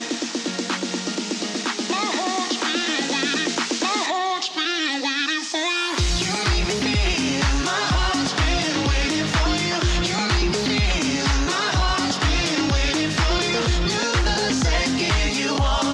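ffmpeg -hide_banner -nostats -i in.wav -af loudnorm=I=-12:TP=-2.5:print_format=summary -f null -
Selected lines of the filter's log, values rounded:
Input Integrated:    -21.2 LUFS
Input True Peak:      -9.9 dBTP
Input LRA:             1.4 LU
Input Threshold:     -31.2 LUFS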